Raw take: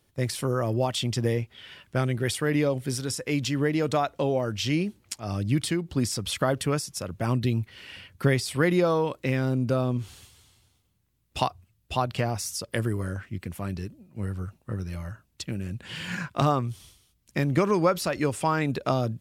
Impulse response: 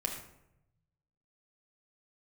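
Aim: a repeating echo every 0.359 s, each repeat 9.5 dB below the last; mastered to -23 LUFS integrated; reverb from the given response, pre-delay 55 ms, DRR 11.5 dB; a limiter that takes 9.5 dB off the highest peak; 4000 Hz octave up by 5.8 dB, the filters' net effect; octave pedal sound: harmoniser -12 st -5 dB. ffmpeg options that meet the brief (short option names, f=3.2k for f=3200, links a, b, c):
-filter_complex "[0:a]equalizer=f=4k:t=o:g=7.5,alimiter=limit=-16.5dB:level=0:latency=1,aecho=1:1:359|718|1077|1436:0.335|0.111|0.0365|0.012,asplit=2[a][b];[1:a]atrim=start_sample=2205,adelay=55[c];[b][c]afir=irnorm=-1:irlink=0,volume=-14.5dB[d];[a][d]amix=inputs=2:normalize=0,asplit=2[e][f];[f]asetrate=22050,aresample=44100,atempo=2,volume=-5dB[g];[e][g]amix=inputs=2:normalize=0,volume=4dB"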